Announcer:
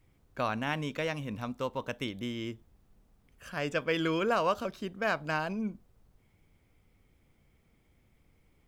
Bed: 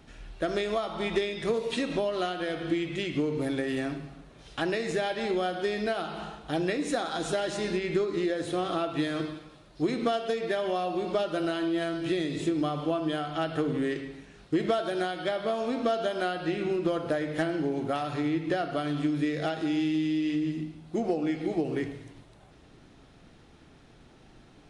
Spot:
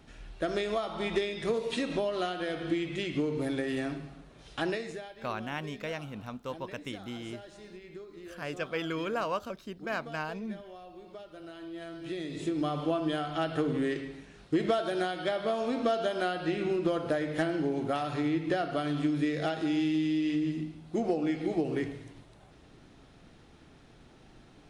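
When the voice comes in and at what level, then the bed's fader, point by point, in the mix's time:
4.85 s, −4.0 dB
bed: 0:04.70 −2 dB
0:05.15 −18.5 dB
0:11.32 −18.5 dB
0:12.74 −1 dB

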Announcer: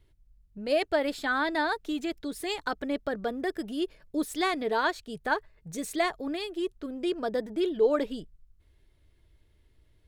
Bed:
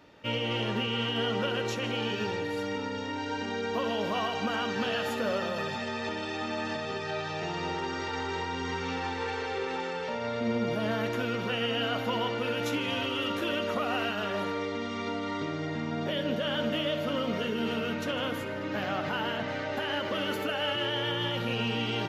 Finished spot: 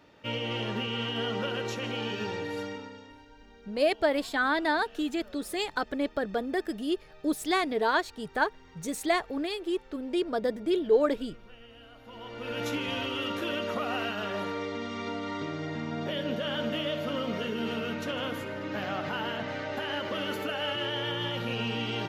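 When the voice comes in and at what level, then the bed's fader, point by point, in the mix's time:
3.10 s, +1.0 dB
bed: 0:02.61 −2 dB
0:03.32 −22.5 dB
0:11.96 −22.5 dB
0:12.60 −1.5 dB

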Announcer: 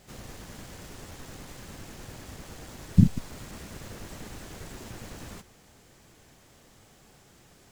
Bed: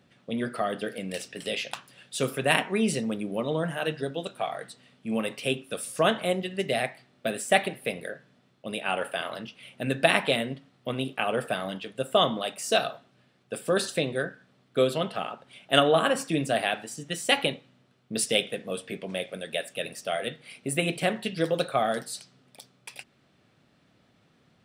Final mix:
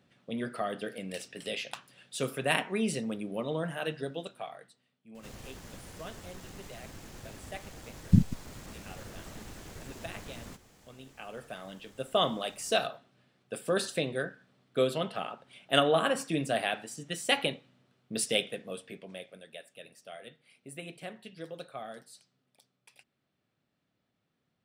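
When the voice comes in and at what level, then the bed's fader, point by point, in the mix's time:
5.15 s, −3.5 dB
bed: 0:04.17 −5 dB
0:05.02 −21.5 dB
0:10.90 −21.5 dB
0:12.26 −4 dB
0:18.41 −4 dB
0:19.63 −16.5 dB

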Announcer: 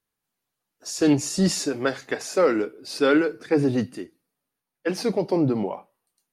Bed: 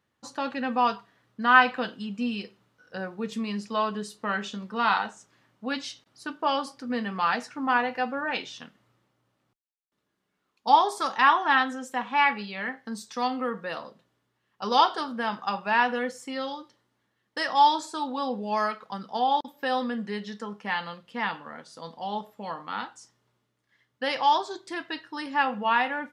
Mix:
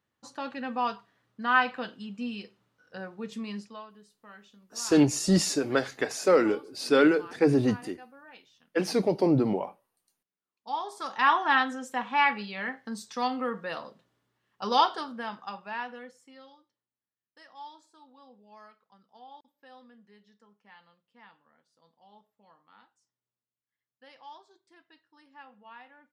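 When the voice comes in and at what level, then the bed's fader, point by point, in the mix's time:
3.90 s, −1.5 dB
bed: 0:03.59 −5.5 dB
0:03.87 −21.5 dB
0:10.38 −21.5 dB
0:11.34 −1.5 dB
0:14.74 −1.5 dB
0:16.95 −25.5 dB

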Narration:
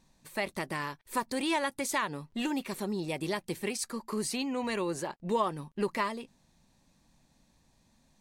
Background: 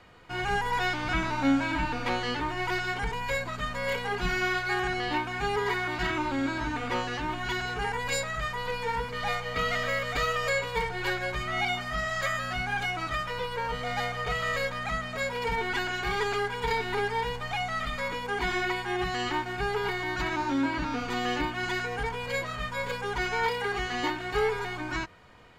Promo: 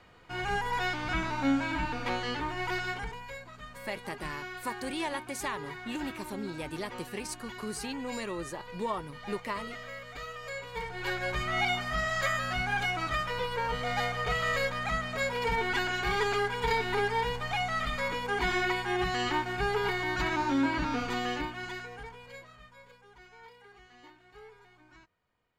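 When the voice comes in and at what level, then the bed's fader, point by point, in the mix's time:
3.50 s, −4.5 dB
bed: 0:02.89 −3 dB
0:03.34 −13.5 dB
0:10.41 −13.5 dB
0:11.34 0 dB
0:21.01 0 dB
0:23.04 −25 dB

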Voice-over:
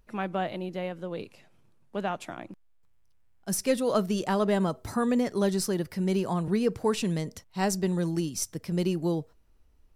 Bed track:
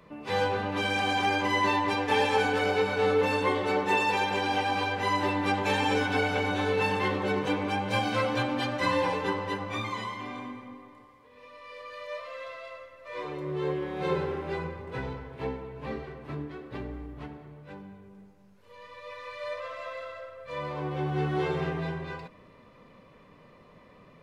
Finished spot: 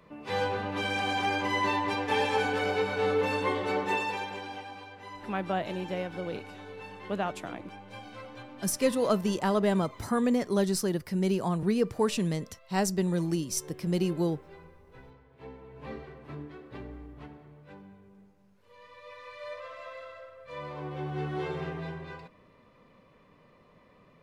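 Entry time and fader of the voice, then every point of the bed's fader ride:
5.15 s, −0.5 dB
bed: 0:03.85 −2.5 dB
0:04.84 −17.5 dB
0:15.25 −17.5 dB
0:15.82 −5 dB

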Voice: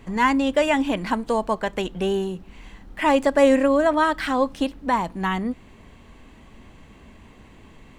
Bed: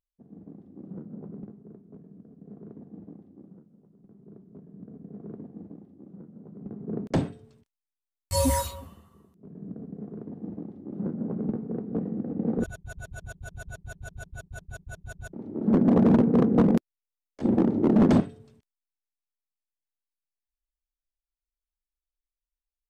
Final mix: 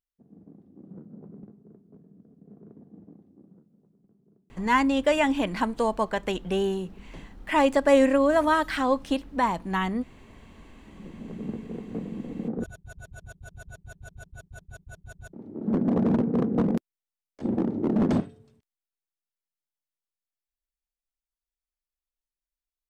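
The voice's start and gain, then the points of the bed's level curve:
4.50 s, −2.5 dB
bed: 0:03.88 −4.5 dB
0:04.69 −22 dB
0:10.54 −22 dB
0:11.50 −4 dB

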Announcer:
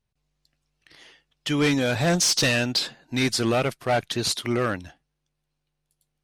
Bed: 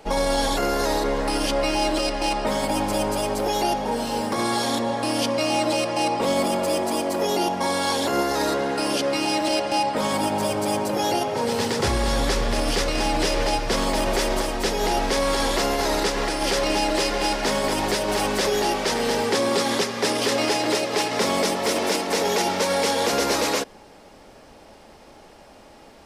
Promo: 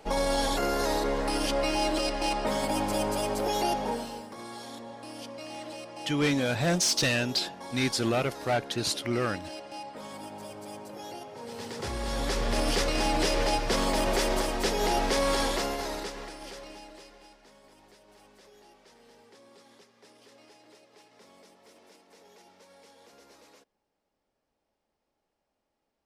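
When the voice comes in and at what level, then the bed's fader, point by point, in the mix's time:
4.60 s, −4.5 dB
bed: 0:03.89 −5 dB
0:04.28 −18.5 dB
0:11.36 −18.5 dB
0:12.58 −4 dB
0:15.37 −4 dB
0:17.47 −34 dB

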